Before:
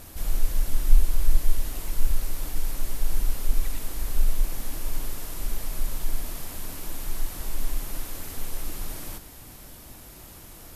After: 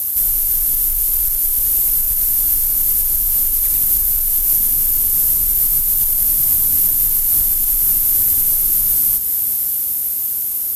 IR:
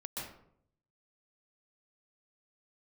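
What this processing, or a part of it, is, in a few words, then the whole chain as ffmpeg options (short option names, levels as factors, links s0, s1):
FM broadcast chain: -filter_complex "[0:a]highpass=f=49:p=1,dynaudnorm=f=250:g=21:m=3.76,acrossover=split=200|1800[s0][s1][s2];[s0]acompressor=threshold=0.0708:ratio=4[s3];[s1]acompressor=threshold=0.00501:ratio=4[s4];[s2]acompressor=threshold=0.00891:ratio=4[s5];[s3][s4][s5]amix=inputs=3:normalize=0,aemphasis=mode=production:type=50fm,alimiter=limit=0.126:level=0:latency=1:release=82,asoftclip=type=hard:threshold=0.0891,lowpass=f=15000:w=0.5412,lowpass=f=15000:w=1.3066,aemphasis=mode=production:type=50fm,volume=1.33"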